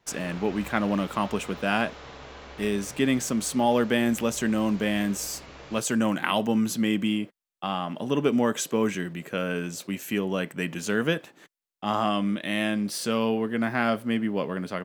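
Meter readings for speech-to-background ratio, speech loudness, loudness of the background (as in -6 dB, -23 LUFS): 17.5 dB, -27.0 LUFS, -44.5 LUFS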